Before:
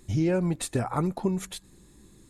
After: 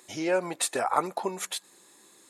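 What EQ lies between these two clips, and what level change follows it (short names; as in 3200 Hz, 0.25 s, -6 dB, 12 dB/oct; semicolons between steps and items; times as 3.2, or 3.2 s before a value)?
Chebyshev high-pass 670 Hz, order 2; +6.5 dB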